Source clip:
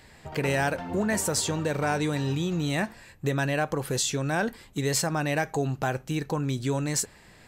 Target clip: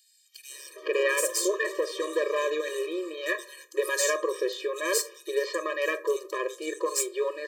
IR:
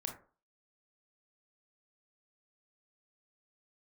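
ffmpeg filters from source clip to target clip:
-filter_complex "[0:a]acrossover=split=3800[s0][s1];[s0]adelay=510[s2];[s2][s1]amix=inputs=2:normalize=0,aeval=exprs='0.266*(cos(1*acos(clip(val(0)/0.266,-1,1)))-cos(1*PI/2))+0.0531*(cos(2*acos(clip(val(0)/0.266,-1,1)))-cos(2*PI/2))+0.0596*(cos(4*acos(clip(val(0)/0.266,-1,1)))-cos(4*PI/2))':c=same,asplit=2[s3][s4];[1:a]atrim=start_sample=2205[s5];[s4][s5]afir=irnorm=-1:irlink=0,volume=0.668[s6];[s3][s6]amix=inputs=2:normalize=0,afftfilt=real='re*eq(mod(floor(b*sr/1024/320),2),1)':imag='im*eq(mod(floor(b*sr/1024/320),2),1)':win_size=1024:overlap=0.75"

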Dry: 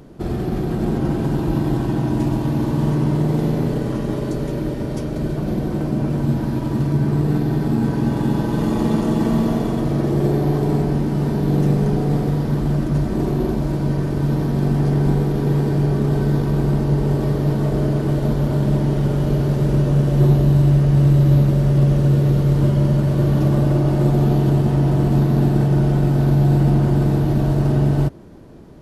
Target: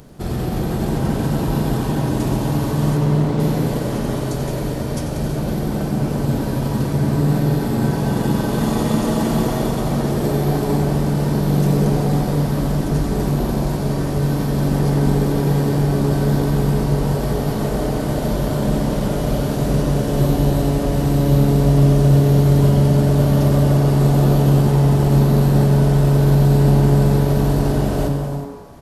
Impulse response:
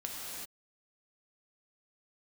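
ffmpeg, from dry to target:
-filter_complex "[0:a]equalizer=f=320:w=2.5:g=-7,asettb=1/sr,asplit=3[s0][s1][s2];[s0]atrim=end=2.974[s3];[s1]atrim=start=2.97:end=3.4,asetpts=PTS-STARTPTS,afade=t=in:d=0.004:c=qsin,afade=t=out:st=0.426:d=0.004:c=qsin,adynamicsmooth=sensitivity=2.5:basefreq=4300[s4];[s2]atrim=start=3.396[s5];[s3][s4]acrossfade=d=0.004:c1=hsin:c2=qsin[s6];[s6][s5]acrossfade=d=0.004:c1=qsin:c2=hsin,highshelf=f=4500:g=10,asplit=8[s7][s8][s9][s10][s11][s12][s13][s14];[s8]adelay=91,afreqshift=140,volume=0.282[s15];[s9]adelay=182,afreqshift=280,volume=0.166[s16];[s10]adelay=273,afreqshift=420,volume=0.0977[s17];[s11]adelay=364,afreqshift=560,volume=0.0582[s18];[s12]adelay=455,afreqshift=700,volume=0.0343[s19];[s13]adelay=546,afreqshift=840,volume=0.0202[s20];[s14]adelay=637,afreqshift=980,volume=0.0119[s21];[s7][s15][s16][s17][s18][s19][s20][s21]amix=inputs=8:normalize=0,asplit=2[s22][s23];[1:a]atrim=start_sample=2205[s24];[s23][s24]afir=irnorm=-1:irlink=0,volume=0.668[s25];[s22][s25]amix=inputs=2:normalize=0,volume=0.75"

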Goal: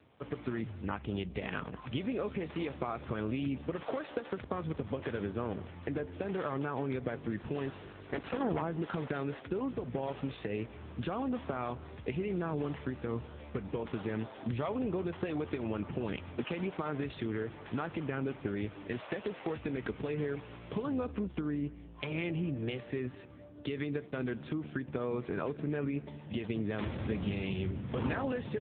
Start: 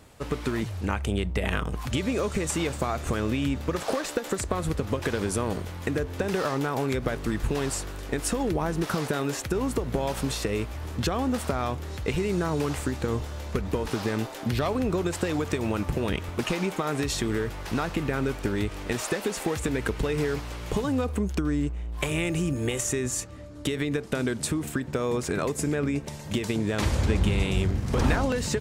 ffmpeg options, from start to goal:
-filter_complex "[0:a]asettb=1/sr,asplit=3[s0][s1][s2];[s0]atrim=end=7.884[s3];[s1]atrim=start=7.88:end=8.61,asetpts=PTS-STARTPTS,afade=t=in:d=0.004:c=qsin,afade=t=out:st=0.726:d=0.004:c=qsin,aeval=exprs='0.2*(cos(1*acos(clip(val(0)/0.2,-1,1)))-cos(1*PI/2))+0.01*(cos(2*acos(clip(val(0)/0.2,-1,1)))-cos(2*PI/2))+0.0224*(cos(4*acos(clip(val(0)/0.2,-1,1)))-cos(4*PI/2))+0.0708*(cos(6*acos(clip(val(0)/0.2,-1,1)))-cos(6*PI/2))+0.002*(cos(7*acos(clip(val(0)/0.2,-1,1)))-cos(7*PI/2))':c=same[s4];[s2]atrim=start=8.606[s5];[s3][s4]acrossfade=d=0.004:c1=hsin:c2=qsin[s6];[s6][s5]acrossfade=d=0.004:c1=qsin:c2=hsin,asplit=2[s7][s8];[s8]adelay=204.1,volume=0.112,highshelf=f=4000:g=-4.59[s9];[s7][s9]amix=inputs=2:normalize=0,volume=0.447" -ar 8000 -c:a libopencore_amrnb -b:a 6700

